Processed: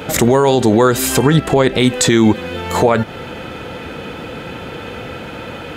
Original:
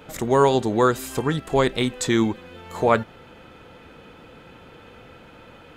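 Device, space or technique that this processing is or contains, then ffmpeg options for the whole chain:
mastering chain: -filter_complex "[0:a]asettb=1/sr,asplit=3[a][b][c];[a]atrim=end=1.304[d];[b]atrim=start=1.3:end=1.8,asetpts=PTS-STARTPTS,afade=t=in:d=0.004:c=qsin,afade=t=out:st=0.496:d=0.004:c=qsin,highshelf=f=4.4k:g=-6.5[e];[c]atrim=start=1.796[f];[d][e]acrossfade=d=0.004:c1=hsin:c2=qsin[g];[g][f]acrossfade=d=0.004:c1=qsin:c2=hsin,highpass=55,equalizer=f=1.1k:t=o:w=0.43:g=-3.5,acompressor=threshold=-24dB:ratio=2,alimiter=level_in=19dB:limit=-1dB:release=50:level=0:latency=1,volume=-1dB"

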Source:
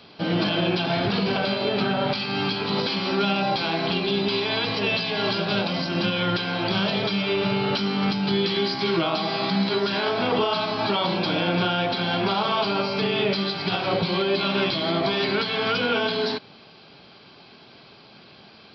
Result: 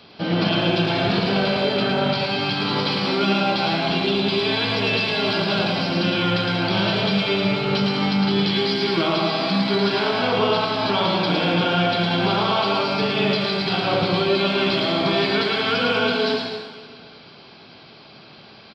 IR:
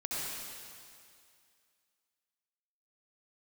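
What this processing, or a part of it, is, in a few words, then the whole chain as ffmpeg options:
saturated reverb return: -filter_complex "[0:a]asplit=2[a][b];[1:a]atrim=start_sample=2205[c];[b][c]afir=irnorm=-1:irlink=0,asoftclip=type=tanh:threshold=-14.5dB,volume=-14dB[d];[a][d]amix=inputs=2:normalize=0,aecho=1:1:110|192.5|254.4|300.8|335.6:0.631|0.398|0.251|0.158|0.1"

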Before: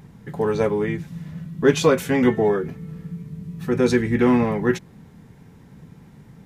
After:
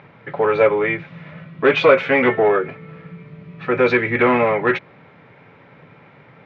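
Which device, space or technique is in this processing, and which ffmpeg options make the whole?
overdrive pedal into a guitar cabinet: -filter_complex "[0:a]asplit=2[a][b];[b]highpass=f=720:p=1,volume=17dB,asoftclip=type=tanh:threshold=-2dB[c];[a][c]amix=inputs=2:normalize=0,lowpass=f=2.9k:p=1,volume=-6dB,highpass=100,equalizer=f=110:t=q:w=4:g=5,equalizer=f=210:t=q:w=4:g=-8,equalizer=f=580:t=q:w=4:g=9,equalizer=f=1.3k:t=q:w=4:g=6,equalizer=f=2.3k:t=q:w=4:g=9,lowpass=f=3.7k:w=0.5412,lowpass=f=3.7k:w=1.3066,volume=-3dB"

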